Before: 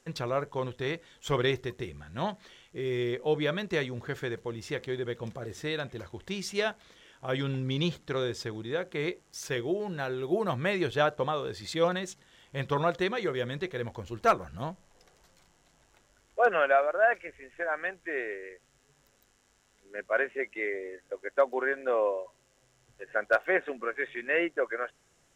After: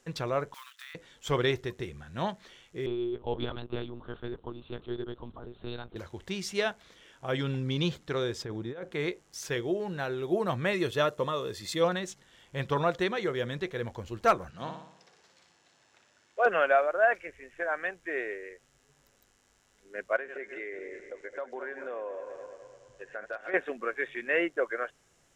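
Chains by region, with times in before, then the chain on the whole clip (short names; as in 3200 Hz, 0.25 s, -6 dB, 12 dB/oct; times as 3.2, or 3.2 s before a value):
0.54–0.95 block floating point 5-bit + elliptic high-pass 1200 Hz, stop band 80 dB + compressor, threshold -42 dBFS
2.86–5.96 fixed phaser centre 540 Hz, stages 6 + monotone LPC vocoder at 8 kHz 120 Hz
8.42–8.92 high shelf 2400 Hz -11 dB + negative-ratio compressor -37 dBFS
10.73–11.81 high shelf 8200 Hz +11.5 dB + notch comb 780 Hz
14.5–16.46 BPF 150–5700 Hz + tilt shelf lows -3.5 dB, about 1400 Hz + flutter echo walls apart 10.1 m, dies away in 0.67 s
20.16–23.54 regenerating reverse delay 0.105 s, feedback 68%, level -13 dB + LPF 8800 Hz 24 dB/oct + compressor 3:1, threshold -37 dBFS
whole clip: dry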